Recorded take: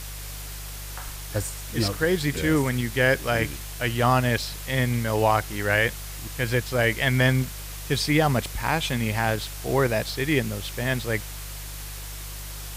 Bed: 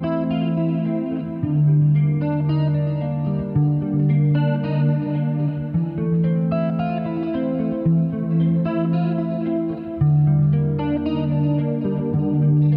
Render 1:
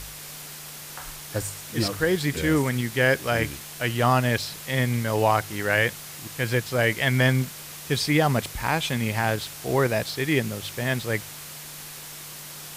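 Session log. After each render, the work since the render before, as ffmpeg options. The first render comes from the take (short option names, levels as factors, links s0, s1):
-af "bandreject=f=50:t=h:w=4,bandreject=f=100:t=h:w=4"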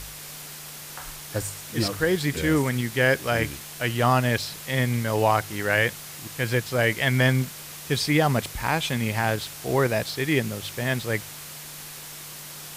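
-af anull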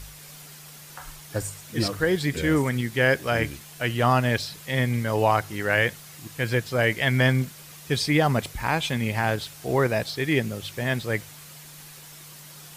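-af "afftdn=nr=7:nf=-40"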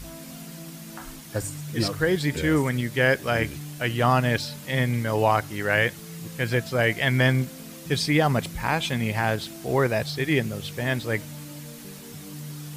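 -filter_complex "[1:a]volume=0.0891[s0];[0:a][s0]amix=inputs=2:normalize=0"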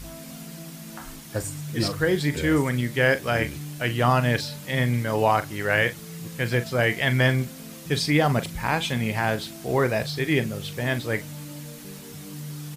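-filter_complex "[0:a]asplit=2[s0][s1];[s1]adelay=41,volume=0.237[s2];[s0][s2]amix=inputs=2:normalize=0"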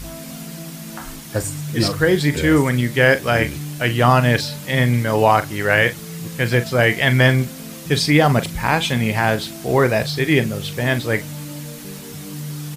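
-af "volume=2.11,alimiter=limit=0.794:level=0:latency=1"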